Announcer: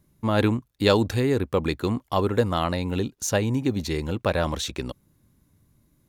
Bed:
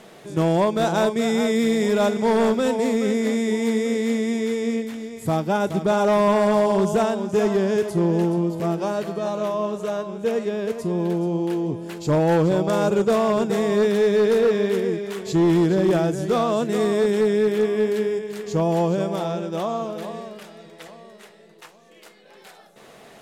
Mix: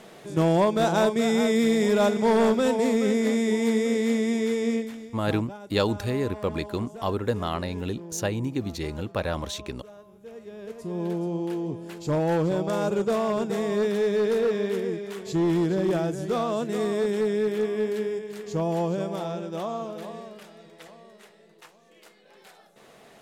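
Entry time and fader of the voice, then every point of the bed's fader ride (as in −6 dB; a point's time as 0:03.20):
4.90 s, −4.5 dB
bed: 0:04.75 −1.5 dB
0:05.60 −21 dB
0:10.27 −21 dB
0:11.04 −5.5 dB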